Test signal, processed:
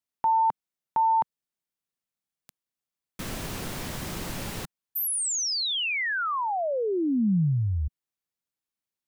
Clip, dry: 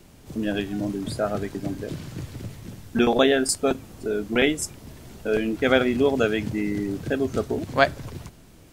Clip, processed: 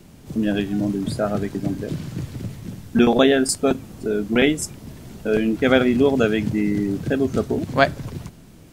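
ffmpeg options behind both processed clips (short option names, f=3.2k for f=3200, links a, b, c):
-af "equalizer=f=180:w=0.96:g=6,volume=1.5dB"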